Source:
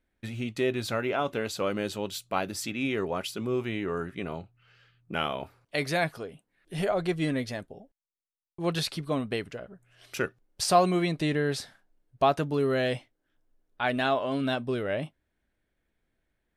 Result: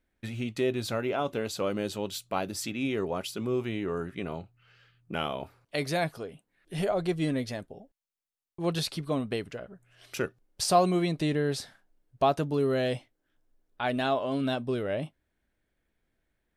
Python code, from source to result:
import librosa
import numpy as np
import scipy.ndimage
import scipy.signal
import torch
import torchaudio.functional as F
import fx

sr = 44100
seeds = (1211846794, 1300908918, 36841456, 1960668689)

y = fx.dynamic_eq(x, sr, hz=1800.0, q=0.9, threshold_db=-41.0, ratio=4.0, max_db=-5)